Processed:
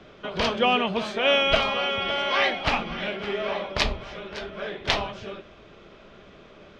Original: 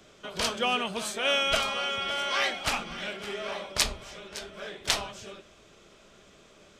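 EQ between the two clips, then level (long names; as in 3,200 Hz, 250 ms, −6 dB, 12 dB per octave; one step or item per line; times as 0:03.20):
dynamic equaliser 1,400 Hz, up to −5 dB, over −45 dBFS, Q 3.2
high-frequency loss of the air 260 metres
+8.5 dB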